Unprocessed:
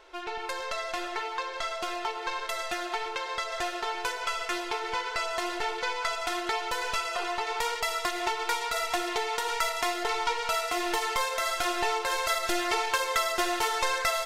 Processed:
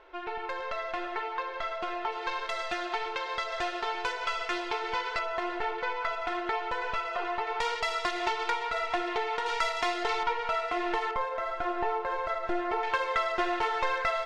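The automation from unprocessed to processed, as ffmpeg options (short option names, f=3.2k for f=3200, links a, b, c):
-af "asetnsamples=n=441:p=0,asendcmd='2.12 lowpass f 4300;5.19 lowpass f 2200;7.6 lowpass f 4600;8.5 lowpass f 2700;9.46 lowpass f 4600;10.23 lowpass f 2300;11.11 lowpass f 1300;12.83 lowpass f 2400',lowpass=2.4k"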